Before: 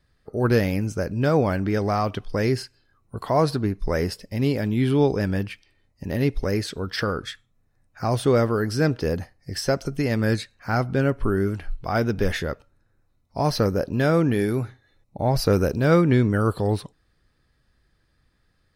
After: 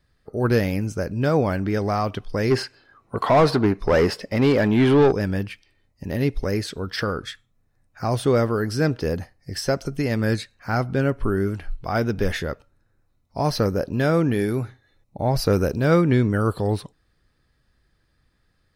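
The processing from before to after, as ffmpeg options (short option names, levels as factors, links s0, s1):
-filter_complex "[0:a]asplit=3[s0][s1][s2];[s0]afade=t=out:st=2.5:d=0.02[s3];[s1]asplit=2[s4][s5];[s5]highpass=f=720:p=1,volume=14.1,asoftclip=type=tanh:threshold=0.447[s6];[s4][s6]amix=inputs=2:normalize=0,lowpass=f=1400:p=1,volume=0.501,afade=t=in:st=2.5:d=0.02,afade=t=out:st=5.11:d=0.02[s7];[s2]afade=t=in:st=5.11:d=0.02[s8];[s3][s7][s8]amix=inputs=3:normalize=0"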